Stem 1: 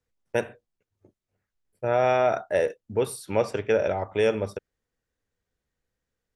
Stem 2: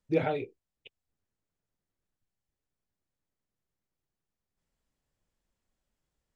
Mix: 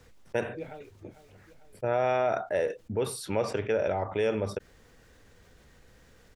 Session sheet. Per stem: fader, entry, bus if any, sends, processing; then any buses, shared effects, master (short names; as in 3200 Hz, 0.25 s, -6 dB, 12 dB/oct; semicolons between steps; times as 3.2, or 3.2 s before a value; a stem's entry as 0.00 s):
-6.0 dB, 0.00 s, no send, no echo send, fast leveller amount 50%
-7.5 dB, 0.45 s, no send, echo send -19.5 dB, auto duck -10 dB, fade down 1.15 s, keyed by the first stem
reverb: off
echo: feedback echo 0.449 s, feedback 57%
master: high shelf 8400 Hz -8.5 dB